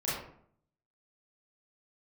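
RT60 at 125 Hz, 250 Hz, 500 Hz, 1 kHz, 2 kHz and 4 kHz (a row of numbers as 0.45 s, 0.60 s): 0.85 s, 0.75 s, 0.65 s, 0.60 s, 0.50 s, 0.35 s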